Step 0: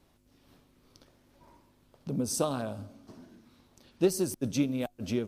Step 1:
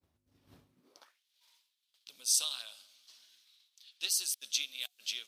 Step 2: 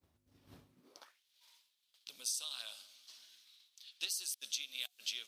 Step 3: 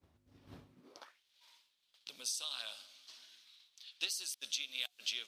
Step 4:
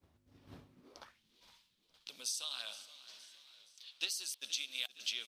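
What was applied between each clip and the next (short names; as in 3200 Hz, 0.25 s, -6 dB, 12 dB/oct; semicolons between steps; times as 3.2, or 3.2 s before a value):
expander -54 dBFS; high-pass sweep 78 Hz -> 3500 Hz, 0.67–1.22; gain +4 dB
compressor 16:1, threshold -37 dBFS, peak gain reduction 14 dB; gain +2 dB
LPF 3600 Hz 6 dB/oct; gain +5 dB
frequency-shifting echo 0.468 s, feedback 52%, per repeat -31 Hz, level -17.5 dB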